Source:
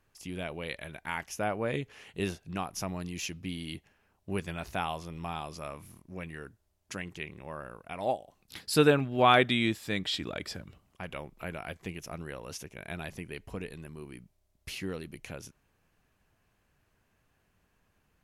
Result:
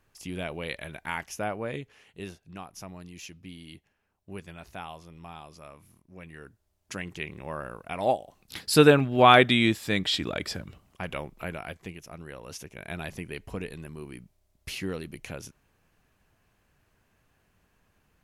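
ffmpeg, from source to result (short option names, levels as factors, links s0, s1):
-af "volume=14.1,afade=t=out:st=1.02:d=1.04:silence=0.316228,afade=t=in:st=6.11:d=1.39:silence=0.237137,afade=t=out:st=11.18:d=0.88:silence=0.334965,afade=t=in:st=12.06:d=1.04:silence=0.421697"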